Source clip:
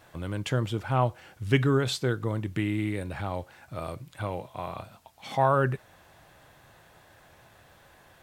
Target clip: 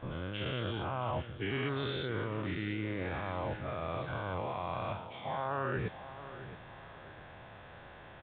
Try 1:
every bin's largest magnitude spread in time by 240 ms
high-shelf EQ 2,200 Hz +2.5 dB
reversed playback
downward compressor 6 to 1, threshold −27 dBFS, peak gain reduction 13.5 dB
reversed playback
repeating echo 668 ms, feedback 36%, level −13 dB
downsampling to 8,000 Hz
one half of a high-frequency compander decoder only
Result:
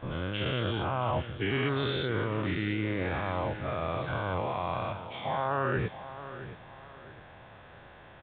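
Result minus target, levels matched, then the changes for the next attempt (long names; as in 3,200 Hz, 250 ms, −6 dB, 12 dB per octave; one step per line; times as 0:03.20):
downward compressor: peak gain reduction −5.5 dB
change: downward compressor 6 to 1, threshold −33.5 dBFS, peak gain reduction 19 dB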